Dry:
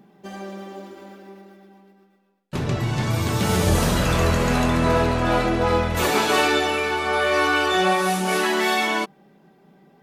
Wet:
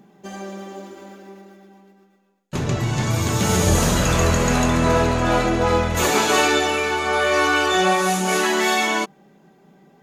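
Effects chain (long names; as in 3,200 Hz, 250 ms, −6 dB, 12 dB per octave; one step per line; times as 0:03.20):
parametric band 6,700 Hz +10 dB 0.24 octaves
level +1.5 dB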